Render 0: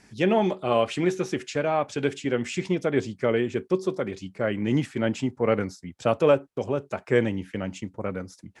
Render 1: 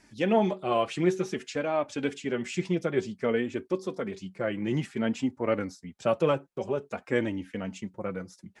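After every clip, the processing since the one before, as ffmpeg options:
ffmpeg -i in.wav -af "flanger=delay=3.1:depth=3.1:regen=31:speed=0.55:shape=triangular" out.wav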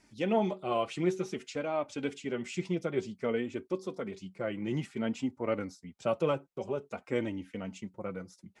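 ffmpeg -i in.wav -af "bandreject=frequency=1700:width=8.6,volume=-4.5dB" out.wav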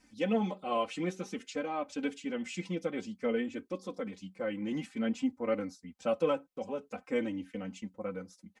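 ffmpeg -i in.wav -af "aecho=1:1:3.9:0.92,volume=-3.5dB" out.wav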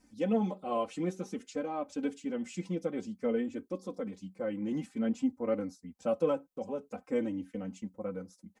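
ffmpeg -i in.wav -af "equalizer=frequency=2600:width_type=o:width=2.2:gain=-9.5,volume=1.5dB" out.wav

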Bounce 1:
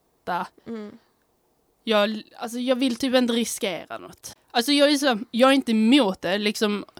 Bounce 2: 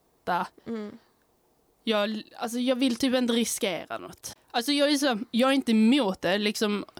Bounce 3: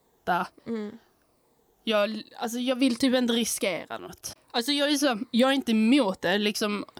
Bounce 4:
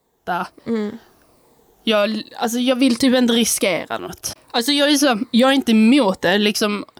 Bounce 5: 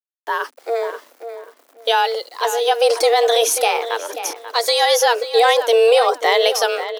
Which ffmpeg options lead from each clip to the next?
ffmpeg -i in.wav -af "alimiter=limit=-14.5dB:level=0:latency=1:release=188" out.wav
ffmpeg -i in.wav -af "afftfilt=real='re*pow(10,7/40*sin(2*PI*(0.99*log(max(b,1)*sr/1024/100)/log(2)-(-1.3)*(pts-256)/sr)))':imag='im*pow(10,7/40*sin(2*PI*(0.99*log(max(b,1)*sr/1024/100)/log(2)-(-1.3)*(pts-256)/sr)))':win_size=1024:overlap=0.75" out.wav
ffmpeg -i in.wav -af "dynaudnorm=framelen=190:gausssize=5:maxgain=12.5dB,alimiter=limit=-6.5dB:level=0:latency=1:release=30" out.wav
ffmpeg -i in.wav -filter_complex "[0:a]acrusher=bits=7:mix=0:aa=0.000001,afreqshift=230,asplit=2[link_01][link_02];[link_02]adelay=537,lowpass=frequency=3500:poles=1,volume=-10.5dB,asplit=2[link_03][link_04];[link_04]adelay=537,lowpass=frequency=3500:poles=1,volume=0.22,asplit=2[link_05][link_06];[link_06]adelay=537,lowpass=frequency=3500:poles=1,volume=0.22[link_07];[link_01][link_03][link_05][link_07]amix=inputs=4:normalize=0" out.wav

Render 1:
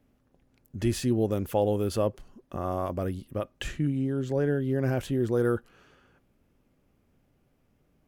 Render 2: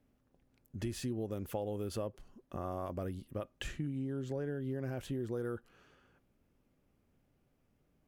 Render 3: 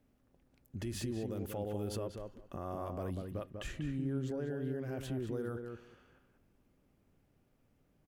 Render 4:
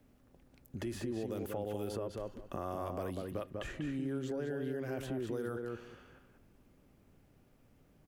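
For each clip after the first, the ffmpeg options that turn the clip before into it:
ffmpeg -i in.wav -af "acompressor=threshold=-28dB:ratio=6,volume=-6dB" out.wav
ffmpeg -i in.wav -filter_complex "[0:a]alimiter=level_in=8dB:limit=-24dB:level=0:latency=1:release=50,volume=-8dB,asplit=2[link_01][link_02];[link_02]adelay=193,lowpass=frequency=2300:poles=1,volume=-5dB,asplit=2[link_03][link_04];[link_04]adelay=193,lowpass=frequency=2300:poles=1,volume=0.16,asplit=2[link_05][link_06];[link_06]adelay=193,lowpass=frequency=2300:poles=1,volume=0.16[link_07];[link_01][link_03][link_05][link_07]amix=inputs=4:normalize=0,volume=1dB" out.wav
ffmpeg -i in.wav -filter_complex "[0:a]acrossover=split=270|1800[link_01][link_02][link_03];[link_01]acompressor=threshold=-52dB:ratio=4[link_04];[link_02]acompressor=threshold=-43dB:ratio=4[link_05];[link_03]acompressor=threshold=-59dB:ratio=4[link_06];[link_04][link_05][link_06]amix=inputs=3:normalize=0,volume=6.5dB" out.wav

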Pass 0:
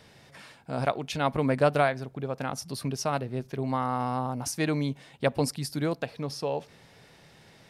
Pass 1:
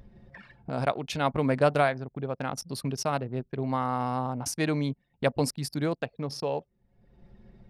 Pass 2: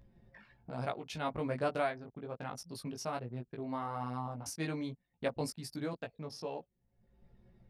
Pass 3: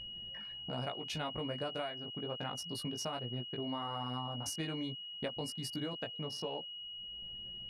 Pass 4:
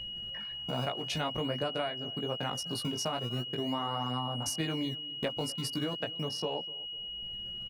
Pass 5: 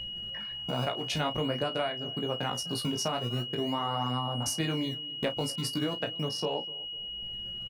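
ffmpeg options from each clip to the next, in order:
ffmpeg -i in.wav -af "anlmdn=0.398,acompressor=mode=upward:threshold=-32dB:ratio=2.5" out.wav
ffmpeg -i in.wav -af "flanger=delay=16.5:depth=2.1:speed=1.2,volume=-6.5dB" out.wav
ffmpeg -i in.wav -af "acompressor=threshold=-39dB:ratio=12,aeval=exprs='val(0)+0.00447*sin(2*PI*2900*n/s)':channel_layout=same,volume=3.5dB" out.wav
ffmpeg -i in.wav -filter_complex "[0:a]acrossover=split=200|5100[link_01][link_02][link_03];[link_01]acrusher=samples=21:mix=1:aa=0.000001:lfo=1:lforange=33.6:lforate=0.41[link_04];[link_04][link_02][link_03]amix=inputs=3:normalize=0,asplit=2[link_05][link_06];[link_06]adelay=249,lowpass=frequency=890:poles=1,volume=-19dB,asplit=2[link_07][link_08];[link_08]adelay=249,lowpass=frequency=890:poles=1,volume=0.42,asplit=2[link_09][link_10];[link_10]adelay=249,lowpass=frequency=890:poles=1,volume=0.42[link_11];[link_05][link_07][link_09][link_11]amix=inputs=4:normalize=0,volume=5.5dB" out.wav
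ffmpeg -i in.wav -filter_complex "[0:a]asplit=2[link_01][link_02];[link_02]adelay=33,volume=-12dB[link_03];[link_01][link_03]amix=inputs=2:normalize=0,volume=2.5dB" out.wav

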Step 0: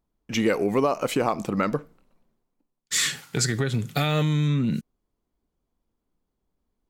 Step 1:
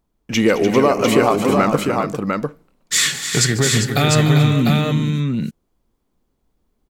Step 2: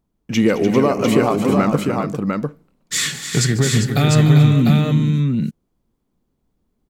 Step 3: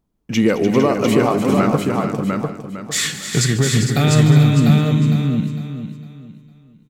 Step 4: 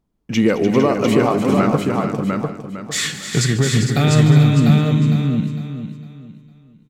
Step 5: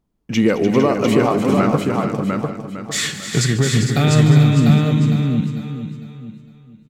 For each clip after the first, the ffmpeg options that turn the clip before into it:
ffmpeg -i in.wav -af "aecho=1:1:145|215|296|397|699:0.141|0.158|0.335|0.376|0.631,volume=7dB" out.wav
ffmpeg -i in.wav -af "equalizer=frequency=160:width=0.62:gain=7,volume=-4dB" out.wav
ffmpeg -i in.wav -af "aecho=1:1:455|910|1365|1820:0.335|0.107|0.0343|0.011" out.wav
ffmpeg -i in.wav -af "highshelf=frequency=8900:gain=-6.5" out.wav
ffmpeg -i in.wav -af "aecho=1:1:901:0.112" out.wav

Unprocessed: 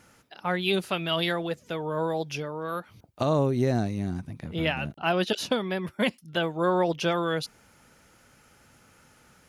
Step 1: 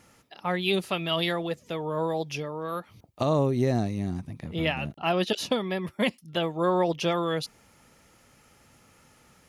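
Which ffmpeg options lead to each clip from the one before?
ffmpeg -i in.wav -af "bandreject=frequency=1500:width=8" out.wav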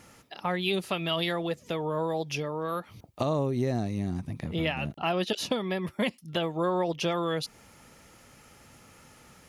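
ffmpeg -i in.wav -af "acompressor=threshold=-34dB:ratio=2,volume=4dB" out.wav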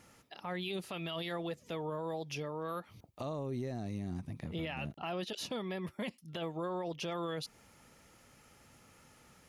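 ffmpeg -i in.wav -af "alimiter=limit=-23dB:level=0:latency=1:release=11,volume=-7dB" out.wav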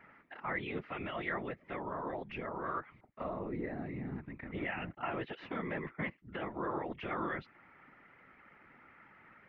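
ffmpeg -i in.wav -af "highpass=210,equalizer=frequency=470:width_type=q:width=4:gain=-8,equalizer=frequency=710:width_type=q:width=4:gain=-3,equalizer=frequency=1400:width_type=q:width=4:gain=4,equalizer=frequency=2000:width_type=q:width=4:gain=9,lowpass=frequency=2200:width=0.5412,lowpass=frequency=2200:width=1.3066,afftfilt=real='hypot(re,im)*cos(2*PI*random(0))':imag='hypot(re,im)*sin(2*PI*random(1))':win_size=512:overlap=0.75,volume=8.5dB" out.wav

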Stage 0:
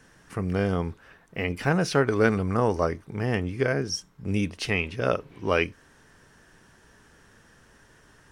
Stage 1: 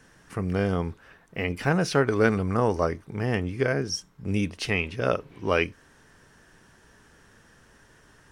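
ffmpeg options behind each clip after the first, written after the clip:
ffmpeg -i in.wav -af anull out.wav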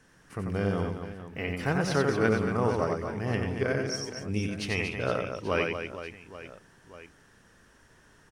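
ffmpeg -i in.wav -af "aecho=1:1:90|234|464.4|833|1423:0.631|0.398|0.251|0.158|0.1,volume=-5dB" out.wav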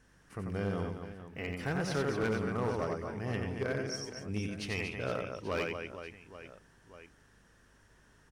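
ffmpeg -i in.wav -af "aeval=exprs='val(0)+0.000794*(sin(2*PI*50*n/s)+sin(2*PI*2*50*n/s)/2+sin(2*PI*3*50*n/s)/3+sin(2*PI*4*50*n/s)/4+sin(2*PI*5*50*n/s)/5)':channel_layout=same,asoftclip=type=hard:threshold=-21dB,volume=-5.5dB" out.wav

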